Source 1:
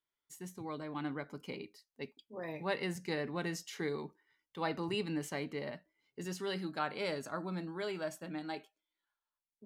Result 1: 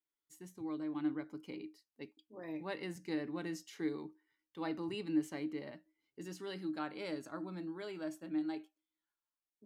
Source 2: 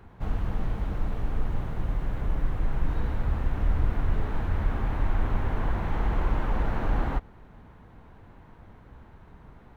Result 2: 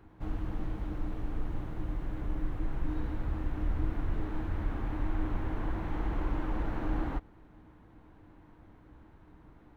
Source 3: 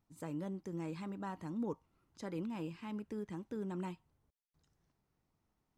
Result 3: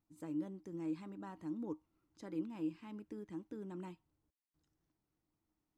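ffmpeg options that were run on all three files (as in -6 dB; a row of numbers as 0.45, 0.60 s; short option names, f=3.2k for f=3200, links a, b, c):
-af "equalizer=f=310:w=8:g=15,volume=-7dB"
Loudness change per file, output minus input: -1.5, -6.0, -2.0 LU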